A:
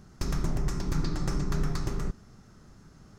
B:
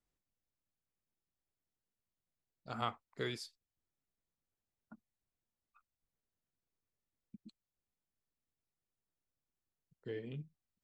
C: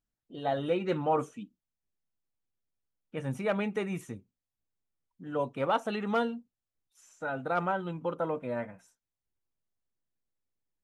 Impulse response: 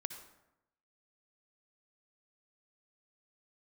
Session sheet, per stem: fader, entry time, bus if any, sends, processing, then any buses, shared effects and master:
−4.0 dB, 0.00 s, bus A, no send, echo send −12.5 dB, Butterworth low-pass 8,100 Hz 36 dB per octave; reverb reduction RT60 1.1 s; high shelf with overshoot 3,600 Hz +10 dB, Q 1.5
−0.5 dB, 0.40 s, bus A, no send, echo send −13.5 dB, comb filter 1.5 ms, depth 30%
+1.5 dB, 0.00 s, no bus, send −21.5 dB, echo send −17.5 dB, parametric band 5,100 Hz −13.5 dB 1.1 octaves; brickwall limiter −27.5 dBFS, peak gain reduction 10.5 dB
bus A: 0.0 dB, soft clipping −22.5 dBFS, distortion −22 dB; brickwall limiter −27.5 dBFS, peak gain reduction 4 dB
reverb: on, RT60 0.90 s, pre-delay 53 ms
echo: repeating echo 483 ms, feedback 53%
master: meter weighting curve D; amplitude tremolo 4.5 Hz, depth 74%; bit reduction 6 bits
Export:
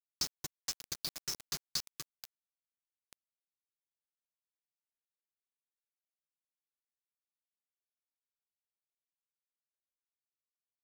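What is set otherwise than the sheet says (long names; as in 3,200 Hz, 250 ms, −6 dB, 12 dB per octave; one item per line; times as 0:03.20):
stem A −4.0 dB → −10.5 dB
stem B −0.5 dB → −12.5 dB
stem C: muted
reverb: off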